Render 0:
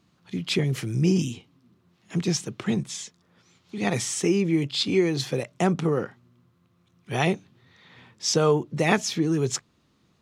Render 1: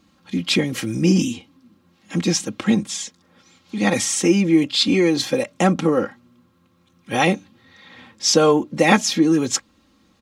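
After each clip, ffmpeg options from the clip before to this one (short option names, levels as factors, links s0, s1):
-af "aecho=1:1:3.7:0.75,volume=1.88"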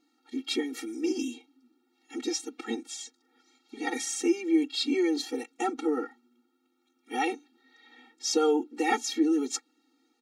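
-af "afftfilt=real='re*eq(mod(floor(b*sr/1024/240),2),1)':imag='im*eq(mod(floor(b*sr/1024/240),2),1)':win_size=1024:overlap=0.75,volume=0.398"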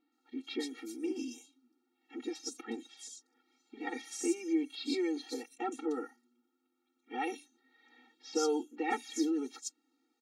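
-filter_complex "[0:a]acrossover=split=3900[s0][s1];[s1]adelay=120[s2];[s0][s2]amix=inputs=2:normalize=0,volume=0.447"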